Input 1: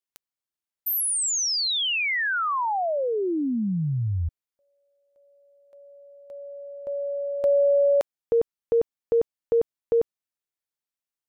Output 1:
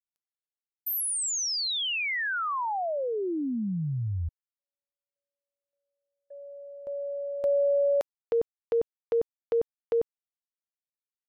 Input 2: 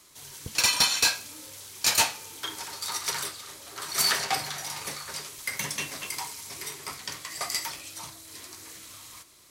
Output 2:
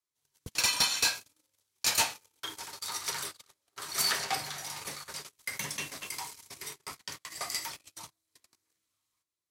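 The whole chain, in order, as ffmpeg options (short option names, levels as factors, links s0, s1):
-af "agate=range=0.0251:threshold=0.00631:ratio=16:release=26:detection=peak,volume=0.596"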